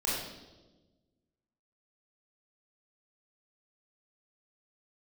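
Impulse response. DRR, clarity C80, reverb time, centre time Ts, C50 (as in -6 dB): -7.0 dB, 2.5 dB, 1.2 s, 75 ms, -0.5 dB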